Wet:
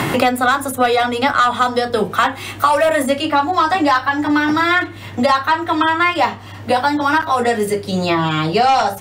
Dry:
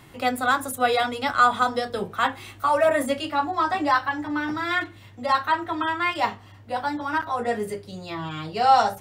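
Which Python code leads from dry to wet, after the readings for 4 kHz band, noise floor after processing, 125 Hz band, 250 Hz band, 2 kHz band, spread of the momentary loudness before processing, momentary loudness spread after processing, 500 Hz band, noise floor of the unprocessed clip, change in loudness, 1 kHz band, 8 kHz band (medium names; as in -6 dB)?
+9.0 dB, -33 dBFS, +12.5 dB, +11.0 dB, +8.0 dB, 13 LU, 5 LU, +8.5 dB, -48 dBFS, +8.0 dB, +7.0 dB, +8.5 dB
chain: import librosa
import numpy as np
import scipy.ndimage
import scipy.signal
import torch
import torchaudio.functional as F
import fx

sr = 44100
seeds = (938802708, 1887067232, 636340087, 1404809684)

y = fx.fold_sine(x, sr, drive_db=4, ceiling_db=-6.0)
y = fx.band_squash(y, sr, depth_pct=100)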